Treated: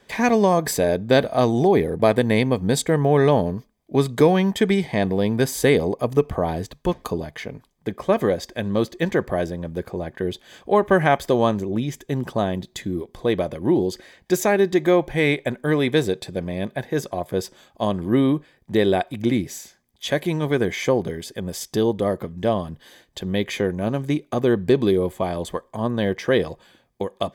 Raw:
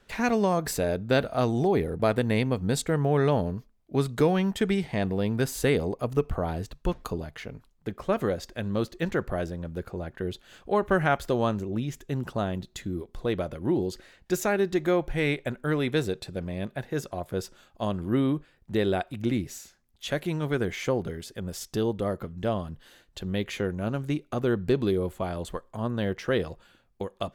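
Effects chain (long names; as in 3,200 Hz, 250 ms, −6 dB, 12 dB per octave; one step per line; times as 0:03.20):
notch comb filter 1,400 Hz
level +7.5 dB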